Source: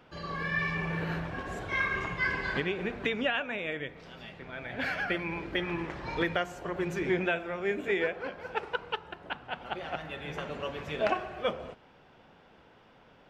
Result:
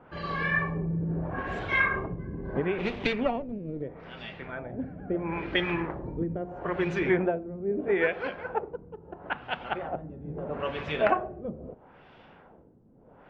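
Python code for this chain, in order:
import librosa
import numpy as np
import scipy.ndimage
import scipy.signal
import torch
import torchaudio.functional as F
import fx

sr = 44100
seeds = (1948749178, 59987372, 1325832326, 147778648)

y = fx.lower_of_two(x, sr, delay_ms=0.31, at=(2.78, 3.82))
y = fx.filter_lfo_lowpass(y, sr, shape='sine', hz=0.76, low_hz=250.0, high_hz=3700.0, q=1.1)
y = F.gain(torch.from_numpy(y), 4.0).numpy()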